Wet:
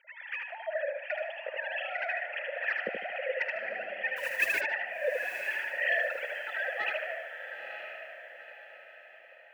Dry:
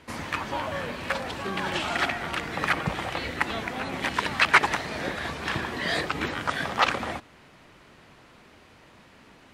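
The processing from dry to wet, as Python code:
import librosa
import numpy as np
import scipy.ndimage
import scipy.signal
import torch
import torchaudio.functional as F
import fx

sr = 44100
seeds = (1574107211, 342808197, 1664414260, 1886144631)

y = fx.sine_speech(x, sr)
y = fx.spec_gate(y, sr, threshold_db=-25, keep='strong')
y = 10.0 ** (-17.0 / 20.0) * np.tanh(y / 10.0 ** (-17.0 / 20.0))
y = fx.vowel_filter(y, sr, vowel='e')
y = fx.echo_feedback(y, sr, ms=76, feedback_pct=29, wet_db=-4.0)
y = fx.mod_noise(y, sr, seeds[0], snr_db=16, at=(4.16, 4.61))
y = fx.echo_diffused(y, sr, ms=925, feedback_pct=40, wet_db=-8)
y = y * librosa.db_to_amplitude(6.5)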